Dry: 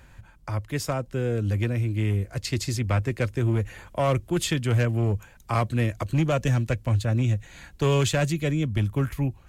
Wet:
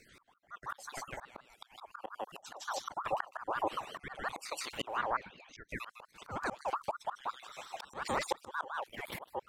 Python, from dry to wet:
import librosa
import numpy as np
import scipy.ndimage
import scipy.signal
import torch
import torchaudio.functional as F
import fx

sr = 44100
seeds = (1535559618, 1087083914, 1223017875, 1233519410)

y = fx.spec_dropout(x, sr, seeds[0], share_pct=63)
y = y + 10.0 ** (-4.0 / 20.0) * np.pad(y, (int(154 * sr / 1000.0), 0))[:len(y)]
y = fx.auto_swell(y, sr, attack_ms=653.0)
y = fx.lowpass(y, sr, hz=fx.line((4.96, 8600.0), (5.68, 3300.0)), slope=24, at=(4.96, 5.68), fade=0.02)
y = fx.ring_lfo(y, sr, carrier_hz=990.0, swing_pct=35, hz=5.6)
y = F.gain(torch.from_numpy(y), 5.5).numpy()